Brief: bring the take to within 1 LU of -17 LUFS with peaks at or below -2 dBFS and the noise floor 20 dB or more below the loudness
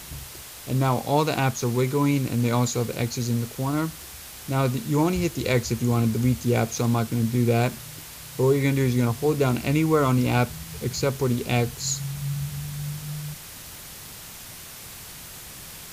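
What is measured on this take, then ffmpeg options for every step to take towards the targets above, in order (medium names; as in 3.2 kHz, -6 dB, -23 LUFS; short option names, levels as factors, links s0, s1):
noise floor -41 dBFS; noise floor target -45 dBFS; loudness -24.5 LUFS; peak level -7.5 dBFS; loudness target -17.0 LUFS
-> -af "afftdn=nr=6:nf=-41"
-af "volume=2.37,alimiter=limit=0.794:level=0:latency=1"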